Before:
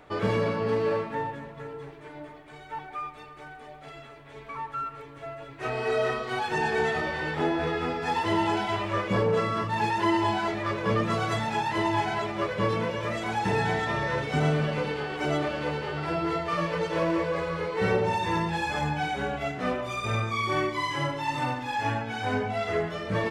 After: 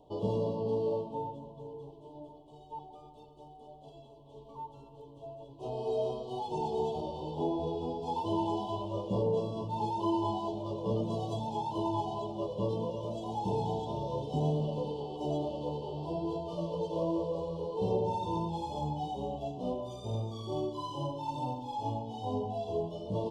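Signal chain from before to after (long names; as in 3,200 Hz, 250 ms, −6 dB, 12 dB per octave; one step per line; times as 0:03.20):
Chebyshev band-stop filter 990–3,000 Hz, order 4
high-shelf EQ 2,100 Hz −8.5 dB
level −4.5 dB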